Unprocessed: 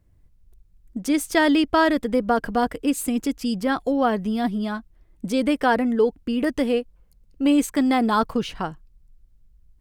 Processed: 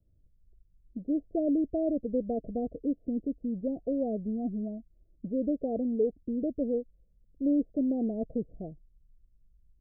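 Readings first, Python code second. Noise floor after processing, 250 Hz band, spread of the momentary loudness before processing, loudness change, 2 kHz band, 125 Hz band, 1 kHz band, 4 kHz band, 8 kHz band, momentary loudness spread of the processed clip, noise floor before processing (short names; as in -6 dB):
-65 dBFS, -8.0 dB, 10 LU, -9.0 dB, under -40 dB, -8.0 dB, -22.5 dB, under -40 dB, under -40 dB, 11 LU, -58 dBFS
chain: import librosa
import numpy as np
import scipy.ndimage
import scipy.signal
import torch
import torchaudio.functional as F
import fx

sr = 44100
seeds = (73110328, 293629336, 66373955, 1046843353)

y = scipy.signal.sosfilt(scipy.signal.butter(16, 670.0, 'lowpass', fs=sr, output='sos'), x)
y = F.gain(torch.from_numpy(y), -8.0).numpy()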